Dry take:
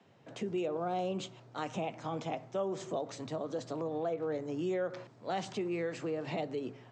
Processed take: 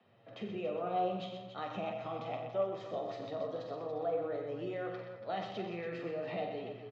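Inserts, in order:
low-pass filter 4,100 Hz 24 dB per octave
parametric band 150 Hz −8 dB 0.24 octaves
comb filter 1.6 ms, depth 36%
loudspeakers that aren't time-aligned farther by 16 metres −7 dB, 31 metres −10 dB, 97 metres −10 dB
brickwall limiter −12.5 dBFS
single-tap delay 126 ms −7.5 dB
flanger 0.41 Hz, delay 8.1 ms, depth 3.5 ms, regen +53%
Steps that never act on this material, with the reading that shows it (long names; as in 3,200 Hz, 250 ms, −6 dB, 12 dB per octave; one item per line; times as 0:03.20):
brickwall limiter −12.5 dBFS: peak of its input −20.5 dBFS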